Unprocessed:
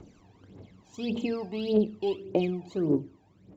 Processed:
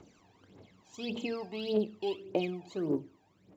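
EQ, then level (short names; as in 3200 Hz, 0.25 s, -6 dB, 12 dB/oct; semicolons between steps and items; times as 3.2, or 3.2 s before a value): low shelf 68 Hz -7.5 dB; low shelf 490 Hz -8 dB; 0.0 dB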